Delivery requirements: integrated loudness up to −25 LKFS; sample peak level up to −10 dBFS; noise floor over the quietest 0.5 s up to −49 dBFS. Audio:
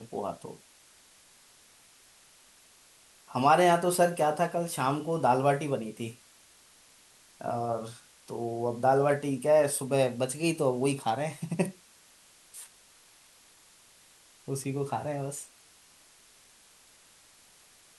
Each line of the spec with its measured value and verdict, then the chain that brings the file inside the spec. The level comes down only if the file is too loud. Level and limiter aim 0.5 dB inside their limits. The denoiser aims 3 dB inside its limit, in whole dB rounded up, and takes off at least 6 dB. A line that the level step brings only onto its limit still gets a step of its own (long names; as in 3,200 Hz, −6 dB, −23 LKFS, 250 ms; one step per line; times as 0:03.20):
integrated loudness −28.5 LKFS: in spec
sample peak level −11.0 dBFS: in spec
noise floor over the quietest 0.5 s −59 dBFS: in spec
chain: no processing needed